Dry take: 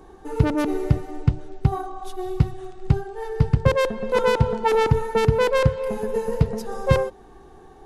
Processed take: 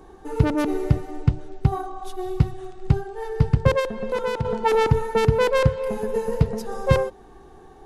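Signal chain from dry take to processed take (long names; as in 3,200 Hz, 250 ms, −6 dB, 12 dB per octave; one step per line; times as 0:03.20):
0:03.79–0:04.45: downward compressor 5 to 1, threshold −22 dBFS, peak gain reduction 10 dB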